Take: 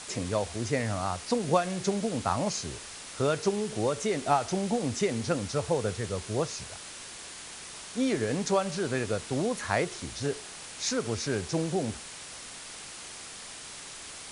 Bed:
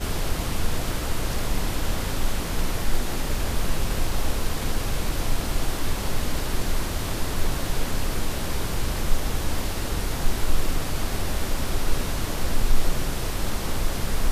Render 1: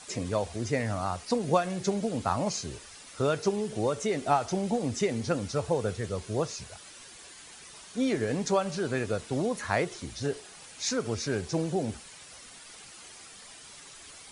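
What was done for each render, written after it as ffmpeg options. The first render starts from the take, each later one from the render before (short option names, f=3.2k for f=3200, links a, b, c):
-af "afftdn=nr=9:nf=-44"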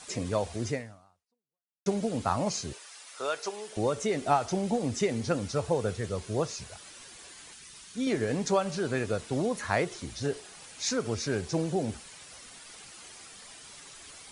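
-filter_complex "[0:a]asettb=1/sr,asplit=3[a][b][c];[a]atrim=end=2.734[d];[b]atrim=start=2.73:end=3.77,asetpts=PTS-STARTPTS,afade=t=in:d=0.004:c=qsin,afade=t=out:st=1.036:d=0.004:c=qsin,highpass=660[e];[c]atrim=start=3.766[f];[d][e]acrossfade=d=0.004:c1=hsin:c2=qsin[g];[g][f]acrossfade=d=0.004:c1=qsin:c2=hsin,asettb=1/sr,asplit=3[h][i][j];[h]atrim=end=7.534[k];[i]atrim=start=7.53:end=8.07,asetpts=PTS-STARTPTS,afade=t=in:d=0.004:c=qsin,afade=t=out:st=0.536:d=0.004:c=qsin,equalizer=f=640:w=0.75:g=-10[l];[j]atrim=start=8.066[m];[k][l]acrossfade=d=0.004:c1=hsin:c2=qsin[n];[n][m]acrossfade=d=0.004:c1=qsin:c2=hsin,asplit=2[o][p];[o]atrim=end=1.86,asetpts=PTS-STARTPTS,afade=t=out:st=0.7:d=1.16:c=exp[q];[p]atrim=start=1.86,asetpts=PTS-STARTPTS,afade=t=in:d=0.004:c=hsin[r];[q][r]concat=n=2:v=0:a=1"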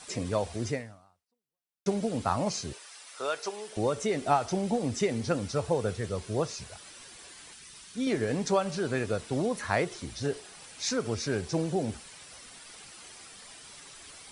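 -af "bandreject=f=6.7k:w=17"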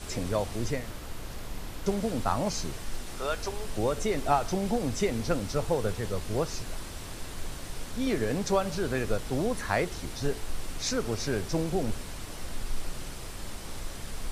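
-filter_complex "[1:a]volume=-13dB[a];[0:a][a]amix=inputs=2:normalize=0"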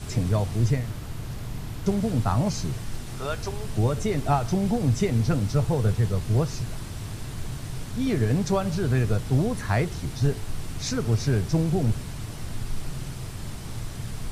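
-af "equalizer=f=120:w=1.1:g=15,bandreject=f=530:w=12"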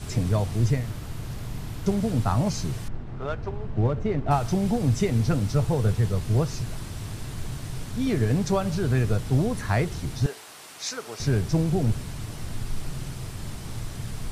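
-filter_complex "[0:a]asettb=1/sr,asplit=3[a][b][c];[a]atrim=end=2.884[d];[b]atrim=start=2.88:end=4.31,asetpts=PTS-STARTPTS,afade=t=in:d=0.004:c=qsin,afade=t=out:st=1.426:d=0.004:c=qsin,adynamicsmooth=sensitivity=1.5:basefreq=1.4k[e];[c]atrim=start=4.306[f];[d][e]acrossfade=d=0.004:c1=hsin:c2=qsin[g];[g][f]acrossfade=d=0.004:c1=qsin:c2=hsin,asettb=1/sr,asplit=3[h][i][j];[h]atrim=end=10.264[k];[i]atrim=start=10.26:end=11.2,asetpts=PTS-STARTPTS,afade=t=in:d=0.004:c=qsin,afade=t=out:st=0.936:d=0.004:c=qsin,highpass=610[l];[j]atrim=start=11.196[m];[k][l]acrossfade=d=0.004:c1=hsin:c2=qsin[n];[n][m]acrossfade=d=0.004:c1=qsin:c2=hsin"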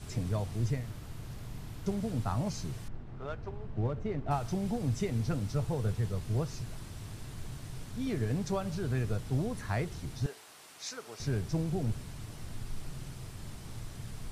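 -af "volume=-9dB"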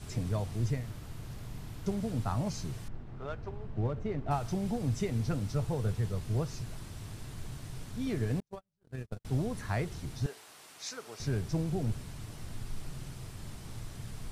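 -filter_complex "[0:a]asettb=1/sr,asplit=3[a][b][c];[a]atrim=end=8.404[d];[b]atrim=start=8.4:end=9.25,asetpts=PTS-STARTPTS,afade=t=in:d=0.004:c=qsin,afade=t=out:st=0.846:d=0.004:c=qsin,agate=range=-51dB:threshold=-29dB:ratio=16:release=100:detection=peak[e];[c]atrim=start=9.246[f];[d][e]acrossfade=d=0.004:c1=hsin:c2=qsin[g];[g][f]acrossfade=d=0.004:c1=qsin:c2=hsin"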